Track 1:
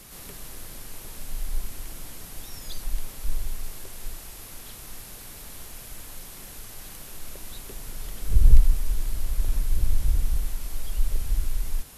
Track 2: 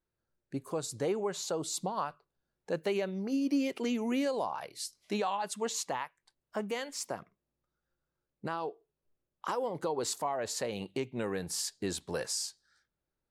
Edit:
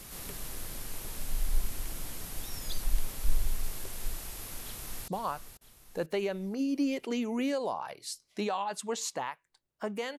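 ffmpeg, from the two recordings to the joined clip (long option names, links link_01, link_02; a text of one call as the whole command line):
ffmpeg -i cue0.wav -i cue1.wav -filter_complex "[0:a]apad=whole_dur=10.18,atrim=end=10.18,atrim=end=5.082[link_01];[1:a]atrim=start=1.808:end=6.91[link_02];[link_01][link_02]acrossfade=duration=0.004:curve1=hsin:curve2=hsin,asplit=2[link_03][link_04];[link_04]afade=type=in:start_time=4.63:duration=0.01,afade=type=out:start_time=5.08:duration=0.01,aecho=0:1:490|980|1470|1960|2450:0.354813|0.159666|0.0718497|0.0323324|0.0145496[link_05];[link_03][link_05]amix=inputs=2:normalize=0" out.wav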